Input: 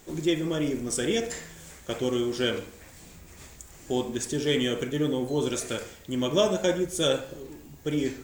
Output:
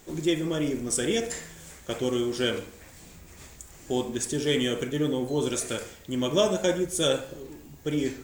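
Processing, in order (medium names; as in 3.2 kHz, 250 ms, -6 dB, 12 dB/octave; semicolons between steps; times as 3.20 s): dynamic bell 9.6 kHz, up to +5 dB, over -51 dBFS, Q 1.5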